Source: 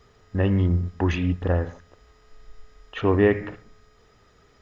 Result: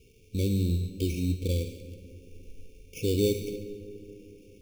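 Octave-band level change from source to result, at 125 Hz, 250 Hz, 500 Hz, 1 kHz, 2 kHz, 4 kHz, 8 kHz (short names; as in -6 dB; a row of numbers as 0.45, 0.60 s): -5.0 dB, -5.5 dB, -6.5 dB, under -40 dB, -15.5 dB, +1.5 dB, n/a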